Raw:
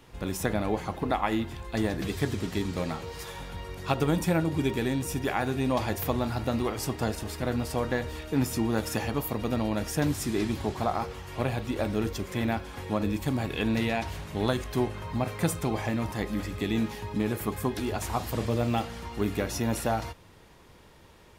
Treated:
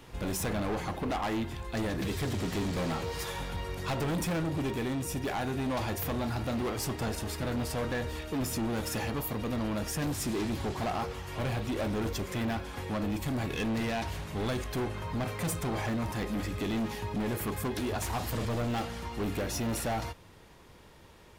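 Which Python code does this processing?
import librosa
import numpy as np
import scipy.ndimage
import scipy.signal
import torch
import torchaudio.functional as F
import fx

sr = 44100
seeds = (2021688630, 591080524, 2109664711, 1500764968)

y = fx.rider(x, sr, range_db=10, speed_s=2.0)
y = np.clip(10.0 ** (28.5 / 20.0) * y, -1.0, 1.0) / 10.0 ** (28.5 / 20.0)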